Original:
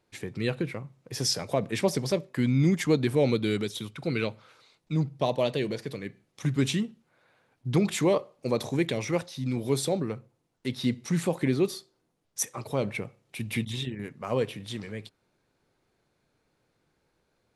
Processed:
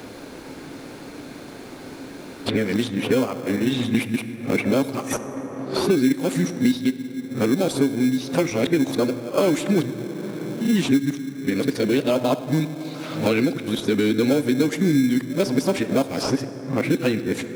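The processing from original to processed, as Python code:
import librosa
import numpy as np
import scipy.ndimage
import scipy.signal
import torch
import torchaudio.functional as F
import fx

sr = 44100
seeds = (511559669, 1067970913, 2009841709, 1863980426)

p1 = x[::-1].copy()
p2 = fx.peak_eq(p1, sr, hz=270.0, db=12.0, octaves=0.36)
p3 = fx.rev_plate(p2, sr, seeds[0], rt60_s=1.9, hf_ratio=0.5, predelay_ms=0, drr_db=12.0)
p4 = fx.sample_hold(p3, sr, seeds[1], rate_hz=1900.0, jitter_pct=0)
p5 = p3 + (p4 * librosa.db_to_amplitude(-8.0))
p6 = fx.low_shelf(p5, sr, hz=130.0, db=-11.5)
p7 = fx.band_squash(p6, sr, depth_pct=100)
y = p7 * librosa.db_to_amplitude(2.5)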